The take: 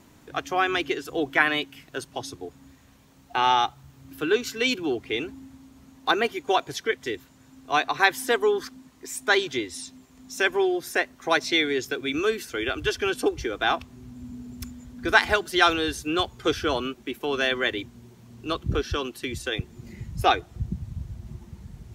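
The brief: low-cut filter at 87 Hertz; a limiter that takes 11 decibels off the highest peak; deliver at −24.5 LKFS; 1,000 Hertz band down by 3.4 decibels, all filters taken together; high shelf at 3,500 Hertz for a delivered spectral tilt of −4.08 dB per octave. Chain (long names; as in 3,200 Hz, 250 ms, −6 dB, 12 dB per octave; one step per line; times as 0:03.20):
high-pass filter 87 Hz
parametric band 1,000 Hz −4.5 dB
high-shelf EQ 3,500 Hz −3.5 dB
level +5.5 dB
brickwall limiter −11.5 dBFS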